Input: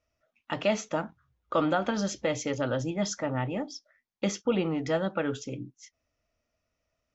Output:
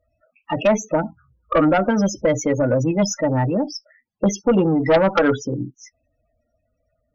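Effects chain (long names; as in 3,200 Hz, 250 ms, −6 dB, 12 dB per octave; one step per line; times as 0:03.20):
0:04.86–0:05.36: drawn EQ curve 170 Hz 0 dB, 660 Hz +5 dB, 1,000 Hz +12 dB, 2,400 Hz +2 dB
spectral peaks only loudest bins 16
harmonic generator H 2 −13 dB, 4 −15 dB, 5 −12 dB, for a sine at −11.5 dBFS
level +5.5 dB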